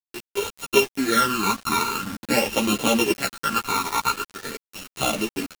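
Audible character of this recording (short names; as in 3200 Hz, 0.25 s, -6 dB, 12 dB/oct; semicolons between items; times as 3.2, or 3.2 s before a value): a buzz of ramps at a fixed pitch in blocks of 32 samples; phasing stages 12, 0.45 Hz, lowest notch 510–1700 Hz; a quantiser's noise floor 6-bit, dither none; a shimmering, thickened sound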